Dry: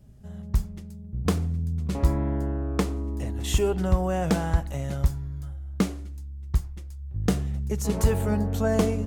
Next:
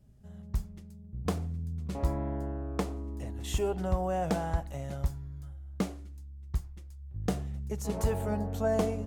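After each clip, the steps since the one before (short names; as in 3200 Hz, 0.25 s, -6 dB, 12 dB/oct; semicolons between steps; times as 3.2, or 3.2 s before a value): dynamic EQ 700 Hz, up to +7 dB, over -42 dBFS, Q 1.5; gain -8 dB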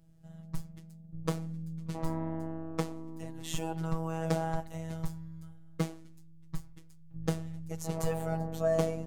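robotiser 162 Hz; gain +1.5 dB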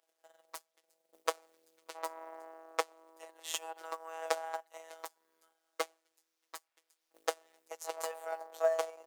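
transient shaper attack +11 dB, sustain -11 dB; companded quantiser 8-bit; inverse Chebyshev high-pass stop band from 160 Hz, stop band 60 dB; gain -4 dB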